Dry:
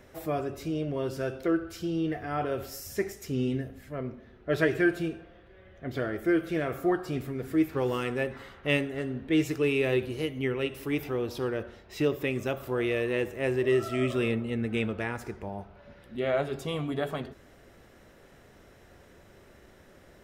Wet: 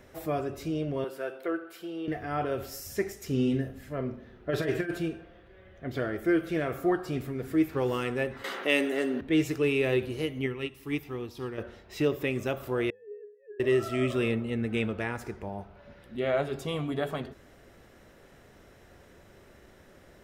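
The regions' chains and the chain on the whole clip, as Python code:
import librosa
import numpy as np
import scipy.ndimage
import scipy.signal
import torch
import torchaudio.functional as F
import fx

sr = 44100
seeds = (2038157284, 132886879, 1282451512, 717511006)

y = fx.chain(x, sr, fx.highpass(hz=450.0, slope=12),
    fx.peak_eq(hz=5800.0, db=-12.0, octaves=0.98), at=(1.04, 2.08))
y = fx.chain(y, sr, fx.notch(hz=2200.0, q=23.0),
    fx.over_compress(threshold_db=-26.0, ratio=-0.5),
    fx.doubler(ms=44.0, db=-11), at=(3.26, 4.98))
y = fx.chain(y, sr, fx.highpass(hz=250.0, slope=24),
    fx.high_shelf(hz=4100.0, db=5.5),
    fx.env_flatten(amount_pct=50), at=(8.44, 9.21))
y = fx.chain(y, sr, fx.peak_eq(hz=570.0, db=-10.0, octaves=0.65),
    fx.notch(hz=1500.0, q=7.8),
    fx.upward_expand(threshold_db=-43.0, expansion=1.5), at=(10.46, 11.58))
y = fx.chain(y, sr, fx.sine_speech(),
    fx.octave_resonator(note='G#', decay_s=0.49), at=(12.9, 13.6))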